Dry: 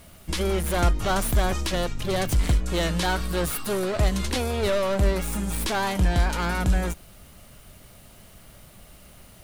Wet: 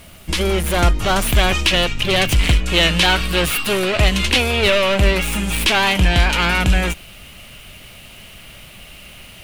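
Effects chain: bell 2700 Hz +6 dB 0.96 oct, from 1.27 s +14.5 dB; gain +6 dB

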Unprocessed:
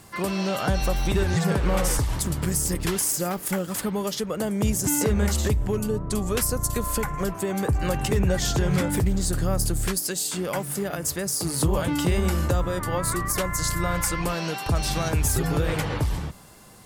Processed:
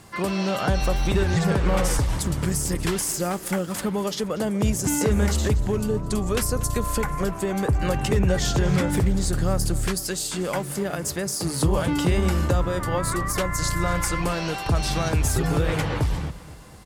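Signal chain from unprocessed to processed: high shelf 11000 Hz -10.5 dB; feedback echo 0.239 s, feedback 52%, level -18 dB; gain +1.5 dB

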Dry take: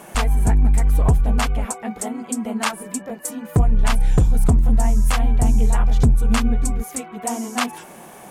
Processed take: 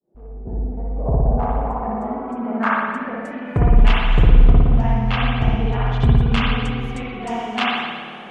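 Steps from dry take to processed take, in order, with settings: opening faded in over 1.79 s; 4.32–5.85 running mean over 5 samples; low-pass sweep 400 Hz -> 3100 Hz, 0.18–4; spring tank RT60 1.5 s, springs 56 ms, chirp 75 ms, DRR -4.5 dB; gain -3.5 dB

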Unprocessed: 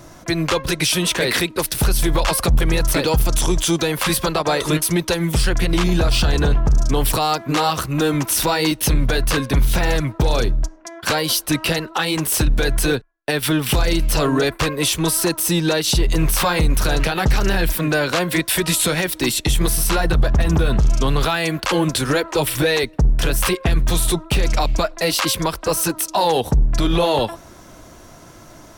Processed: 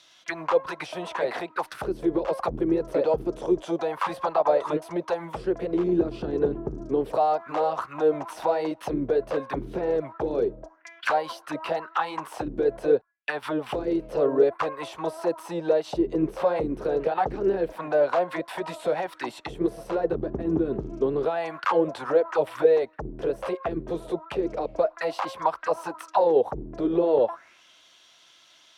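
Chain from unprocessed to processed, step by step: auto-wah 340–3700 Hz, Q 4.1, down, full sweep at -12 dBFS; gain +4 dB

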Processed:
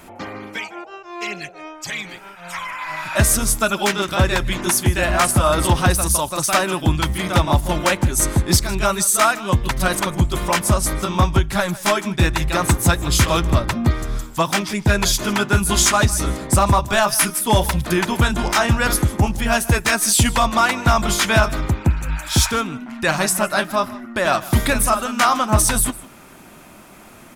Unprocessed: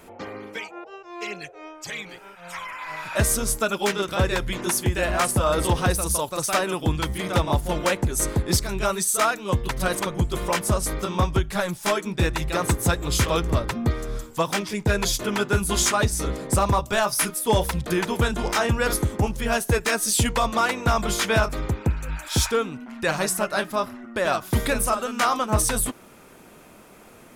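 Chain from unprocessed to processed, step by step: bell 460 Hz -10 dB 0.35 oct; on a send: echo 0.155 s -19 dB; on the sum: gain +6 dB

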